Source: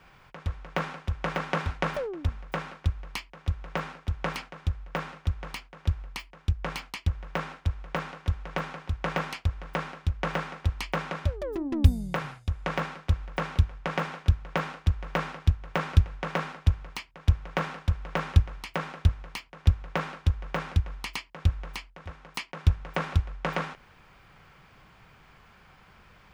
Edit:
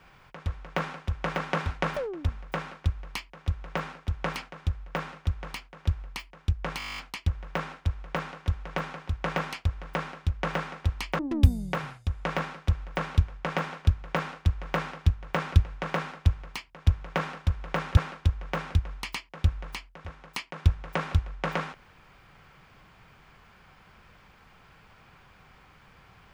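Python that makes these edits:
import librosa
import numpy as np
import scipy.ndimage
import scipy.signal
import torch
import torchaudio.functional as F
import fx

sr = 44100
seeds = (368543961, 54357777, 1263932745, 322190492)

y = fx.edit(x, sr, fx.stutter(start_s=6.78, slice_s=0.02, count=11),
    fx.cut(start_s=10.99, length_s=0.61),
    fx.cut(start_s=18.38, length_s=1.6), tone=tone)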